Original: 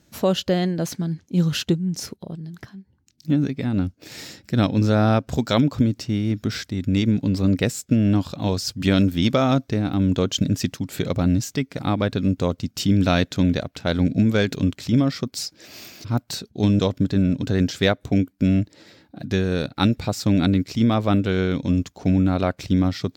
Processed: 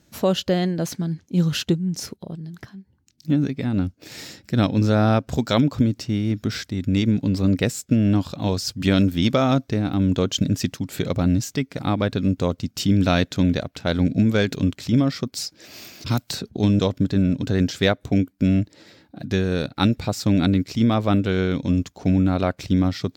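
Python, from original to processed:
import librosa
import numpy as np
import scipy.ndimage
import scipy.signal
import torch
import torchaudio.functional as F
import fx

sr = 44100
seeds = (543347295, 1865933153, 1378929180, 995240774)

y = fx.band_squash(x, sr, depth_pct=100, at=(16.06, 16.57))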